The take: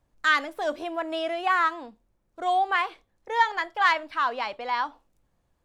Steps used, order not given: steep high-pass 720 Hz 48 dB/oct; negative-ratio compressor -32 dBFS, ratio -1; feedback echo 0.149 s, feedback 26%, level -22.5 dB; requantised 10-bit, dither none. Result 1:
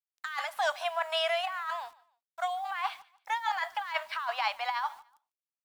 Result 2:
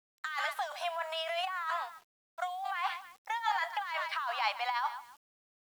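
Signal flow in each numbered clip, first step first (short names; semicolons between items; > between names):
steep high-pass > negative-ratio compressor > requantised > feedback echo; feedback echo > negative-ratio compressor > steep high-pass > requantised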